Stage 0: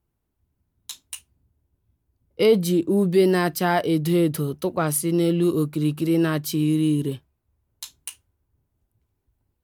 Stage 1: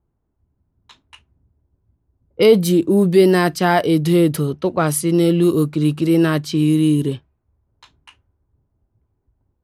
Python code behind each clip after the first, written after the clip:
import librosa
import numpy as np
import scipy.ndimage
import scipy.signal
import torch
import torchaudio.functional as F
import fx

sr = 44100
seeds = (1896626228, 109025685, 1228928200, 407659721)

y = fx.env_lowpass(x, sr, base_hz=1200.0, full_db=-17.5)
y = y * librosa.db_to_amplitude(5.5)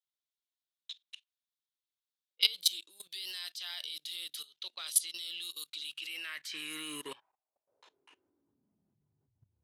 y = fx.filter_sweep_highpass(x, sr, from_hz=3600.0, to_hz=95.0, start_s=5.8, end_s=9.52, q=4.2)
y = fx.level_steps(y, sr, step_db=19)
y = y * librosa.db_to_amplitude(-3.5)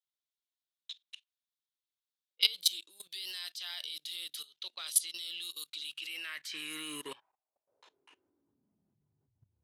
y = x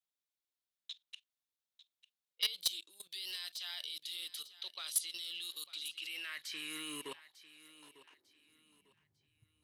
y = 10.0 ** (-21.5 / 20.0) * np.tanh(x / 10.0 ** (-21.5 / 20.0))
y = fx.echo_feedback(y, sr, ms=898, feedback_pct=31, wet_db=-16.5)
y = y * librosa.db_to_amplitude(-2.0)